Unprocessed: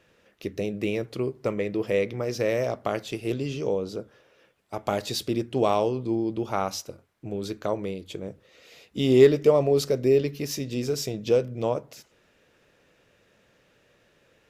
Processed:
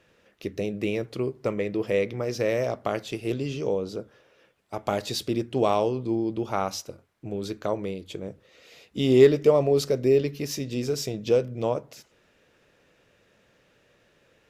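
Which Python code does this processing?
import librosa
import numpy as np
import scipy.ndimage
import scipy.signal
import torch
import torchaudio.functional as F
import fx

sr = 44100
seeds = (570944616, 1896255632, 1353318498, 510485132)

y = fx.high_shelf(x, sr, hz=12000.0, db=-3.5)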